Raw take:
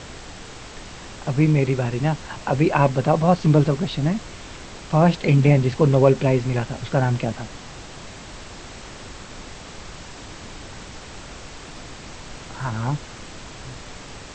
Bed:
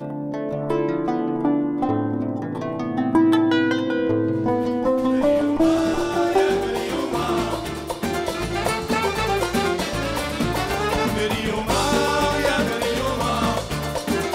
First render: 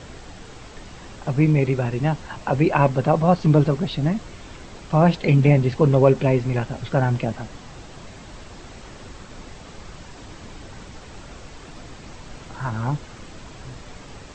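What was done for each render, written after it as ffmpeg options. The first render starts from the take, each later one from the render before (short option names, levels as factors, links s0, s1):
-af "afftdn=nr=6:nf=-39"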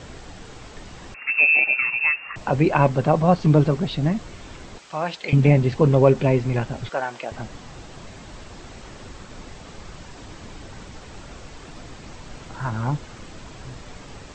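-filter_complex "[0:a]asettb=1/sr,asplit=3[s0][s1][s2];[s0]atrim=end=1.144[s3];[s1]atrim=start=1.14:end=2.36,asetpts=PTS-STARTPTS,afade=t=in:d=0.004:c=qsin,afade=t=out:st=1.216:d=0.004:c=qsin,lowpass=f=2400:t=q:w=0.5098,lowpass=f=2400:t=q:w=0.6013,lowpass=f=2400:t=q:w=0.9,lowpass=f=2400:t=q:w=2.563,afreqshift=-2800[s4];[s2]atrim=start=2.356[s5];[s3][s4]acrossfade=d=0.004:c1=hsin:c2=qsin[s6];[s6][s5]acrossfade=d=0.004:c1=qsin:c2=hsin,asettb=1/sr,asplit=3[s7][s8][s9];[s7]atrim=end=4.784[s10];[s8]atrim=start=4.78:end=5.33,asetpts=PTS-STARTPTS,afade=t=in:d=0.004:c=qsin,afade=t=out:st=0.546:d=0.004:c=qsin,highpass=f=1400:p=1[s11];[s9]atrim=start=5.326[s12];[s10][s11]acrossfade=d=0.004:c1=hsin:c2=qsin[s13];[s13][s12]acrossfade=d=0.004:c1=qsin:c2=hsin,asettb=1/sr,asplit=3[s14][s15][s16];[s14]atrim=end=6.894[s17];[s15]atrim=start=6.89:end=7.32,asetpts=PTS-STARTPTS,afade=t=in:d=0.004:c=qsin,afade=t=out:st=0.426:d=0.004:c=qsin,highpass=600[s18];[s16]atrim=start=7.316[s19];[s17][s18]acrossfade=d=0.004:c1=hsin:c2=qsin[s20];[s20][s19]acrossfade=d=0.004:c1=qsin:c2=hsin"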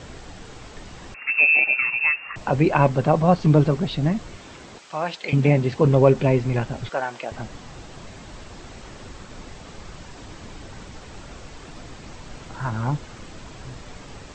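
-filter_complex "[0:a]asettb=1/sr,asplit=3[s0][s1][s2];[s0]atrim=end=4.374[s3];[s1]atrim=start=4.37:end=5.85,asetpts=PTS-STARTPTS,afade=t=in:d=0.004:c=qsin,afade=t=out:st=1.476:d=0.004:c=qsin,highpass=f=140:p=1[s4];[s2]atrim=start=5.846[s5];[s3][s4]acrossfade=d=0.004:c1=hsin:c2=qsin[s6];[s6][s5]acrossfade=d=0.004:c1=qsin:c2=hsin"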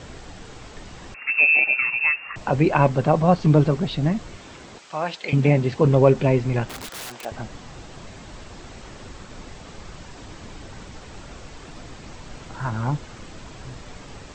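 -filter_complex "[0:a]asettb=1/sr,asplit=3[s0][s1][s2];[s0]atrim=end=6.694[s3];[s1]atrim=start=6.69:end=7.25,asetpts=PTS-STARTPTS,afade=t=in:d=0.004:c=qsin,afade=t=out:st=0.556:d=0.004:c=qsin,aeval=exprs='(mod(29.9*val(0)+1,2)-1)/29.9':c=same[s4];[s2]atrim=start=7.246[s5];[s3][s4]acrossfade=d=0.004:c1=hsin:c2=qsin[s6];[s6][s5]acrossfade=d=0.004:c1=qsin:c2=hsin"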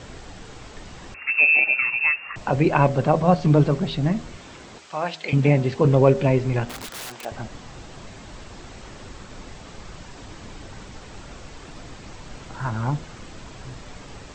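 -af "bandreject=f=79.85:t=h:w=4,bandreject=f=159.7:t=h:w=4,bandreject=f=239.55:t=h:w=4,bandreject=f=319.4:t=h:w=4,bandreject=f=399.25:t=h:w=4,bandreject=f=479.1:t=h:w=4,bandreject=f=558.95:t=h:w=4,bandreject=f=638.8:t=h:w=4,bandreject=f=718.65:t=h:w=4"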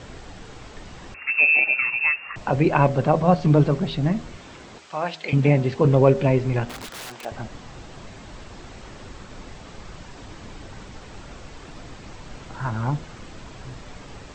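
-af "highshelf=f=6600:g=-5"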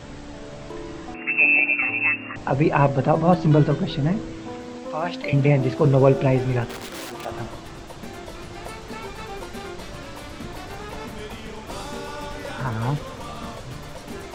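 -filter_complex "[1:a]volume=0.2[s0];[0:a][s0]amix=inputs=2:normalize=0"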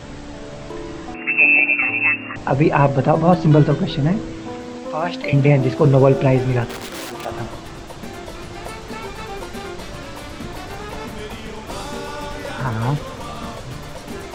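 -af "volume=1.58,alimiter=limit=0.891:level=0:latency=1"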